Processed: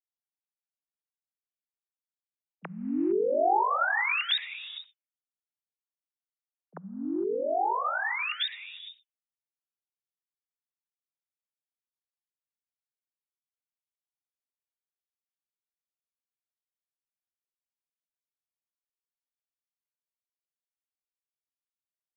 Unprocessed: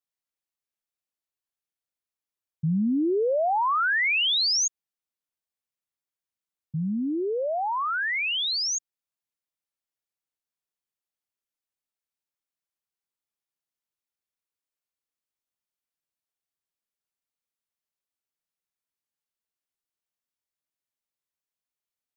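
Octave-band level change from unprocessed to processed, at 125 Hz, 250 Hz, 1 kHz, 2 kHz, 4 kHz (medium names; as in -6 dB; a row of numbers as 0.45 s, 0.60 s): -18.0 dB, -6.0 dB, -1.0 dB, -4.0 dB, -8.0 dB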